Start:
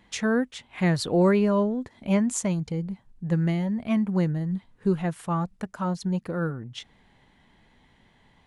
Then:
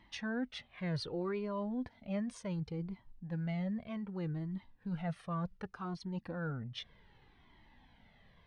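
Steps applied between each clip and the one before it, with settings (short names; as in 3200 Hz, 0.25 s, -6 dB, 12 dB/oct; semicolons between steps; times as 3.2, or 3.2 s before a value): reverse; compressor 5:1, threshold -30 dBFS, peak gain reduction 13 dB; reverse; polynomial smoothing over 15 samples; cascading flanger falling 0.66 Hz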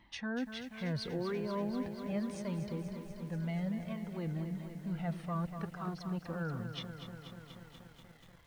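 lo-fi delay 0.241 s, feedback 80%, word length 10-bit, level -9 dB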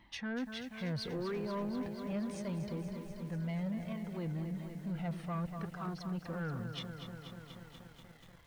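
soft clip -32 dBFS, distortion -17 dB; gain +1 dB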